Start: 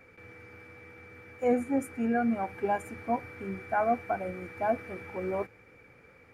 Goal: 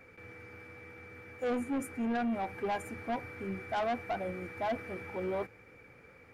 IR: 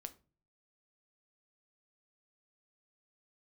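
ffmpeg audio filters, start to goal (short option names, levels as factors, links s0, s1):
-af "asoftclip=type=tanh:threshold=0.0376"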